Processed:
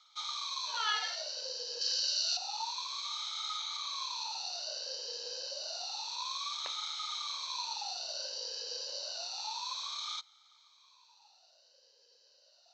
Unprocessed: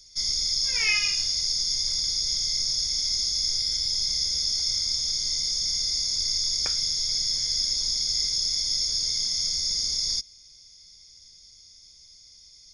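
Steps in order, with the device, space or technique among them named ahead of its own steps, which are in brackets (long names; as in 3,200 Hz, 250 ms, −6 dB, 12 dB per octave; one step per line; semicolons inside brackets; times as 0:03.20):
0:01.81–0:02.37: tilt shelving filter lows −9.5 dB
voice changer toy (ring modulator whose carrier an LFO sweeps 870 Hz, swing 45%, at 0.29 Hz; loudspeaker in its box 500–4,500 Hz, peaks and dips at 540 Hz +5 dB, 920 Hz +8 dB, 1,400 Hz +4 dB)
level −6 dB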